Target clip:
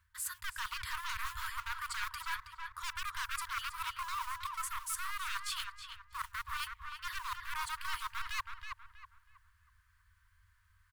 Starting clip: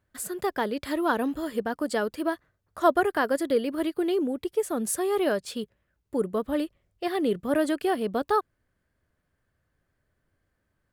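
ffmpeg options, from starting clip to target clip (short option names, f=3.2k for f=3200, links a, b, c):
-filter_complex "[0:a]acrossover=split=350[a][b];[b]volume=20.5dB,asoftclip=hard,volume=-20.5dB[c];[a][c]amix=inputs=2:normalize=0,acrusher=bits=7:mode=log:mix=0:aa=0.000001,aeval=exprs='0.0531*(abs(mod(val(0)/0.0531+3,4)-2)-1)':c=same,afftfilt=real='re*(1-between(b*sr/4096,100,920))':imag='im*(1-between(b*sr/4096,100,920))':win_size=4096:overlap=0.75,areverse,acompressor=threshold=-43dB:ratio=8,areverse,asplit=2[d][e];[e]adelay=322,lowpass=f=2.2k:p=1,volume=-4dB,asplit=2[f][g];[g]adelay=322,lowpass=f=2.2k:p=1,volume=0.37,asplit=2[h][i];[i]adelay=322,lowpass=f=2.2k:p=1,volume=0.37,asplit=2[j][k];[k]adelay=322,lowpass=f=2.2k:p=1,volume=0.37,asplit=2[l][m];[m]adelay=322,lowpass=f=2.2k:p=1,volume=0.37[n];[d][f][h][j][l][n]amix=inputs=6:normalize=0,volume=6.5dB"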